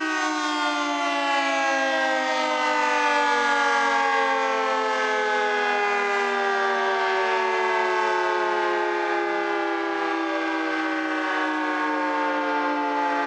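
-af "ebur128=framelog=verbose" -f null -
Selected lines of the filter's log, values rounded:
Integrated loudness:
  I:         -22.7 LUFS
  Threshold: -32.7 LUFS
Loudness range:
  LRA:         3.2 LU
  Threshold: -42.5 LUFS
  LRA low:   -24.5 LUFS
  LRA high:  -21.3 LUFS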